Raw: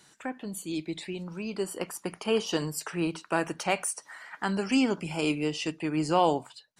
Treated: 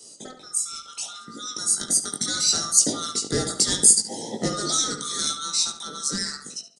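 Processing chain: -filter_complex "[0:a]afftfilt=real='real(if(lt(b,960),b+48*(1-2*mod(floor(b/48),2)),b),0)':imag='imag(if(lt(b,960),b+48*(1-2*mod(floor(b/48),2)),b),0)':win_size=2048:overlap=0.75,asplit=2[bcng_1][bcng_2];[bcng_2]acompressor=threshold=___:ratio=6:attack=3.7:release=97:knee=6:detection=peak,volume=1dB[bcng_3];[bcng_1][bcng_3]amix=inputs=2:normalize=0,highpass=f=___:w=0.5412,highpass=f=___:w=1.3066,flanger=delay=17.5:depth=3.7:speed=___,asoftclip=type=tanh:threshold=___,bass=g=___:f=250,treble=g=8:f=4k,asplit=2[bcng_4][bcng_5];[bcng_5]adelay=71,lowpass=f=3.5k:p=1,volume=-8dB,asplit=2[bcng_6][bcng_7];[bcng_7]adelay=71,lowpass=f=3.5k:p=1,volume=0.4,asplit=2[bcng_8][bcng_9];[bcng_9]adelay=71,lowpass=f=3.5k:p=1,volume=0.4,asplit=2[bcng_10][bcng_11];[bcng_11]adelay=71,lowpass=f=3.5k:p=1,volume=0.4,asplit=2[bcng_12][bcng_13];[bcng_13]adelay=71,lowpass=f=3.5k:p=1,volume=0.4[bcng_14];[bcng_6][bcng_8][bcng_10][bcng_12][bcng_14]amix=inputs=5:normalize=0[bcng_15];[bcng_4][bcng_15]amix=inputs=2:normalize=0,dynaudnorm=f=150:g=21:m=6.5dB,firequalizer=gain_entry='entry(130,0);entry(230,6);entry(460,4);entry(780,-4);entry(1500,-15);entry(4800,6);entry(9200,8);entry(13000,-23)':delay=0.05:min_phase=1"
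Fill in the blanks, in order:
-36dB, 140, 140, 0.71, -23dB, 10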